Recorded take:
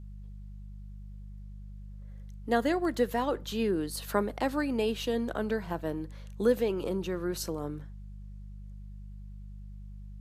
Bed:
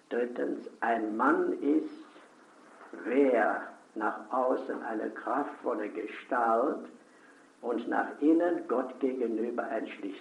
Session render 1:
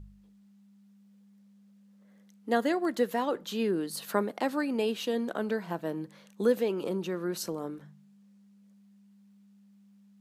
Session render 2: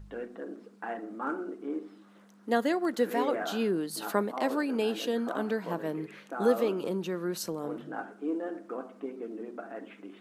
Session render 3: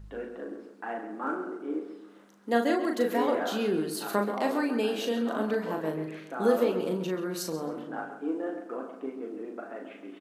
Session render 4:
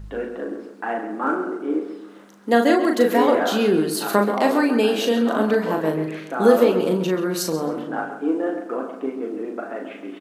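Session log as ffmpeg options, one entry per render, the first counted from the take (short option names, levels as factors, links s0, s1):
-af "bandreject=f=50:t=h:w=4,bandreject=f=100:t=h:w=4,bandreject=f=150:t=h:w=4"
-filter_complex "[1:a]volume=0.398[s0];[0:a][s0]amix=inputs=2:normalize=0"
-filter_complex "[0:a]asplit=2[s0][s1];[s1]adelay=38,volume=0.562[s2];[s0][s2]amix=inputs=2:normalize=0,asplit=2[s3][s4];[s4]adelay=134,lowpass=f=3900:p=1,volume=0.335,asplit=2[s5][s6];[s6]adelay=134,lowpass=f=3900:p=1,volume=0.4,asplit=2[s7][s8];[s8]adelay=134,lowpass=f=3900:p=1,volume=0.4,asplit=2[s9][s10];[s10]adelay=134,lowpass=f=3900:p=1,volume=0.4[s11];[s3][s5][s7][s9][s11]amix=inputs=5:normalize=0"
-af "volume=2.99,alimiter=limit=0.708:level=0:latency=1"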